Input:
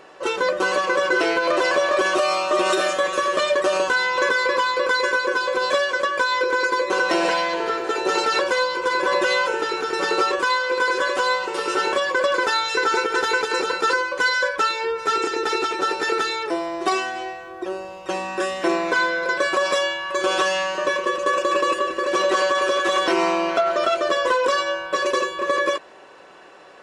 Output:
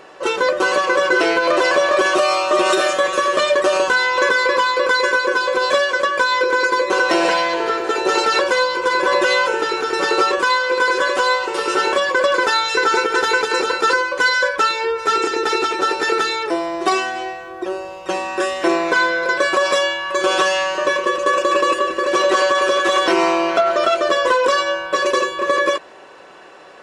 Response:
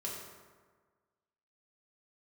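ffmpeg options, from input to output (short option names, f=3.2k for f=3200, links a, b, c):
-af "bandreject=f=94.61:t=h:w=4,bandreject=f=189.22:t=h:w=4,bandreject=f=283.83:t=h:w=4,volume=4dB"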